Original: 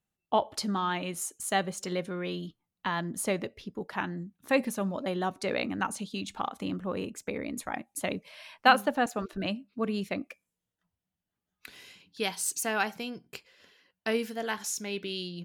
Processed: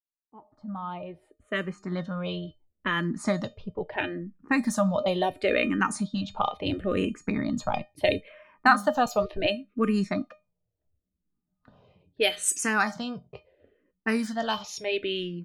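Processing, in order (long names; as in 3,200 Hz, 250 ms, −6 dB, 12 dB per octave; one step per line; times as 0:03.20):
fade in at the beginning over 2.78 s
low-pass that shuts in the quiet parts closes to 480 Hz, open at −26 dBFS
tuned comb filter 610 Hz, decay 0.19 s, harmonics all, mix 80%
automatic gain control gain up to 13 dB
0:06.66–0:08.21: bass and treble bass +6 dB, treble +10 dB
in parallel at +3 dB: downward compressor, threshold −26 dBFS, peak gain reduction 12 dB
on the sum: low-shelf EQ 79 Hz +8 dB
frequency shifter mixed with the dry sound −0.73 Hz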